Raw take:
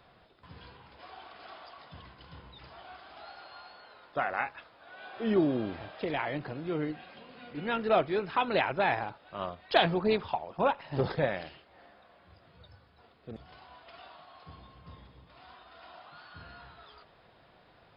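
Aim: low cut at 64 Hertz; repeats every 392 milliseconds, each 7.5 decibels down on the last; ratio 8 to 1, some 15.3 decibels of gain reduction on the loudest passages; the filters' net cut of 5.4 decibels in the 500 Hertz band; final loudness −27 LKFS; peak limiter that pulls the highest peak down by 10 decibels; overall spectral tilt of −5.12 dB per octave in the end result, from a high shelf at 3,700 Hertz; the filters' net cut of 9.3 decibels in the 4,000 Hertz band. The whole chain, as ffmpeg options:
ffmpeg -i in.wav -af "highpass=64,equalizer=frequency=500:width_type=o:gain=-7,highshelf=frequency=3700:gain=-6.5,equalizer=frequency=4000:width_type=o:gain=-8.5,acompressor=threshold=-39dB:ratio=8,alimiter=level_in=11.5dB:limit=-24dB:level=0:latency=1,volume=-11.5dB,aecho=1:1:392|784|1176|1568|1960:0.422|0.177|0.0744|0.0312|0.0131,volume=21.5dB" out.wav

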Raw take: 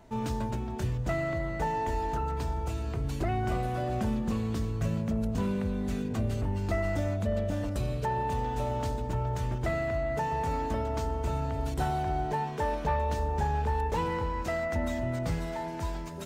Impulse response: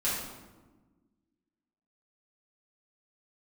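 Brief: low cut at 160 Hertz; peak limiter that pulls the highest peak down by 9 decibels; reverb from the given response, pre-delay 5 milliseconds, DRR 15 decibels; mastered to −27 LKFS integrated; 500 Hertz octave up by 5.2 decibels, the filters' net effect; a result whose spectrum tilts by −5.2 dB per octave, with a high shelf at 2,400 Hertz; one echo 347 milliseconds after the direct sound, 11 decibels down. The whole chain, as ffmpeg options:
-filter_complex "[0:a]highpass=160,equalizer=frequency=500:width_type=o:gain=6.5,highshelf=frequency=2400:gain=6.5,alimiter=limit=-24dB:level=0:latency=1,aecho=1:1:347:0.282,asplit=2[link_01][link_02];[1:a]atrim=start_sample=2205,adelay=5[link_03];[link_02][link_03]afir=irnorm=-1:irlink=0,volume=-23dB[link_04];[link_01][link_04]amix=inputs=2:normalize=0,volume=5.5dB"

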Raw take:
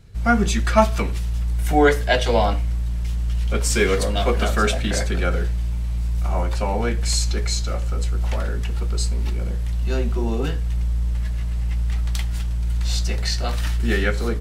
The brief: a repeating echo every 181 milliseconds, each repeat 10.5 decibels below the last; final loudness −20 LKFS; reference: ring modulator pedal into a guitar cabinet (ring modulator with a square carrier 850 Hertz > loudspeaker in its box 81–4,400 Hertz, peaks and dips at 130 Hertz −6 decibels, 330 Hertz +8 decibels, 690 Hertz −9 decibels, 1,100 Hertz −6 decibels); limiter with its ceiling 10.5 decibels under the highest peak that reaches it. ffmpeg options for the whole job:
ffmpeg -i in.wav -af "alimiter=limit=-12.5dB:level=0:latency=1,aecho=1:1:181|362|543:0.299|0.0896|0.0269,aeval=exprs='val(0)*sgn(sin(2*PI*850*n/s))':channel_layout=same,highpass=81,equalizer=frequency=130:width_type=q:width=4:gain=-6,equalizer=frequency=330:width_type=q:width=4:gain=8,equalizer=frequency=690:width_type=q:width=4:gain=-9,equalizer=frequency=1100:width_type=q:width=4:gain=-6,lowpass=frequency=4400:width=0.5412,lowpass=frequency=4400:width=1.3066,volume=4.5dB" out.wav

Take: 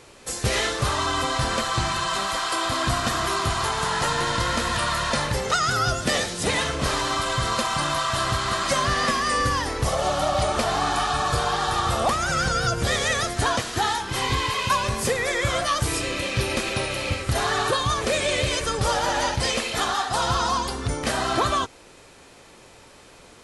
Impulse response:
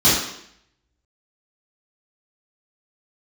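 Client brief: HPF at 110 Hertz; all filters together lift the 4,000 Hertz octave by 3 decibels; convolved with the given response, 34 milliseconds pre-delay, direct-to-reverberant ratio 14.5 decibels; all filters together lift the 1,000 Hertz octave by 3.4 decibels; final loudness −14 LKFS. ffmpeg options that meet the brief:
-filter_complex "[0:a]highpass=110,equalizer=frequency=1000:width_type=o:gain=4,equalizer=frequency=4000:width_type=o:gain=3.5,asplit=2[link_01][link_02];[1:a]atrim=start_sample=2205,adelay=34[link_03];[link_02][link_03]afir=irnorm=-1:irlink=0,volume=-35.5dB[link_04];[link_01][link_04]amix=inputs=2:normalize=0,volume=7dB"

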